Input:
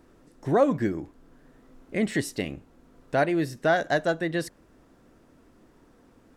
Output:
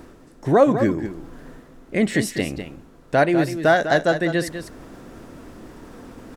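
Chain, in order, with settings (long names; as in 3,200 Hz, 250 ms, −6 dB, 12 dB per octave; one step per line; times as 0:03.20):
reversed playback
upward compression, threshold −36 dBFS
reversed playback
single-tap delay 200 ms −10 dB
level +6 dB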